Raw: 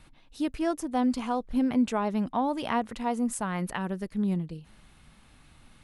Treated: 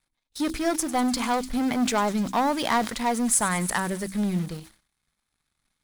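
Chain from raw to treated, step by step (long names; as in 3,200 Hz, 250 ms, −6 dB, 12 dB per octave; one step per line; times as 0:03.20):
leveller curve on the samples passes 2
parametric band 2,800 Hz −10 dB 0.23 octaves
hum removal 64.2 Hz, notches 5
in parallel at −11 dB: centre clipping without the shift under −29 dBFS
on the sum: tilt shelving filter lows −5.5 dB, about 1,200 Hz
on a send: delay with a high-pass on its return 99 ms, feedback 71%, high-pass 5,400 Hz, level −12 dB
on the sum: noise gate −44 dBFS, range −23 dB
level that may fall only so fast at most 150 dB per second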